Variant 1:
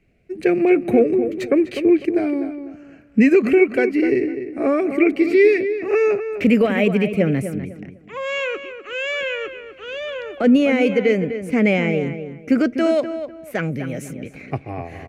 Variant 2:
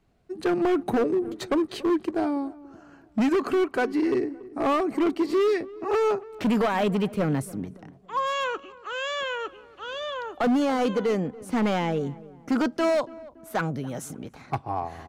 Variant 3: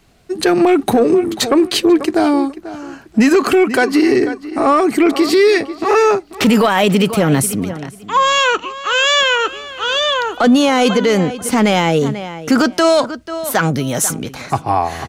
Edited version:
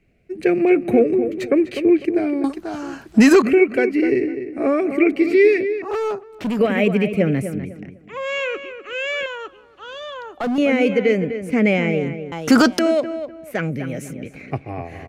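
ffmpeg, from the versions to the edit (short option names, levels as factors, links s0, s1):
-filter_complex "[2:a]asplit=2[s0][s1];[1:a]asplit=2[s2][s3];[0:a]asplit=5[s4][s5][s6][s7][s8];[s4]atrim=end=2.442[s9];[s0]atrim=start=2.438:end=3.422[s10];[s5]atrim=start=3.418:end=5.822[s11];[s2]atrim=start=5.818:end=6.592[s12];[s6]atrim=start=6.588:end=9.262[s13];[s3]atrim=start=9.258:end=10.582[s14];[s7]atrim=start=10.578:end=12.322[s15];[s1]atrim=start=12.318:end=12.792[s16];[s8]atrim=start=12.788[s17];[s9][s10]acrossfade=d=0.004:c1=hsin:c2=hsin[s18];[s18][s11]acrossfade=d=0.004:c1=hsin:c2=hsin[s19];[s19][s12]acrossfade=d=0.004:c1=hsin:c2=hsin[s20];[s20][s13]acrossfade=d=0.004:c1=hsin:c2=hsin[s21];[s21][s14]acrossfade=d=0.004:c1=hsin:c2=hsin[s22];[s22][s15]acrossfade=d=0.004:c1=hsin:c2=hsin[s23];[s23][s16]acrossfade=d=0.004:c1=hsin:c2=hsin[s24];[s24][s17]acrossfade=d=0.004:c1=hsin:c2=hsin"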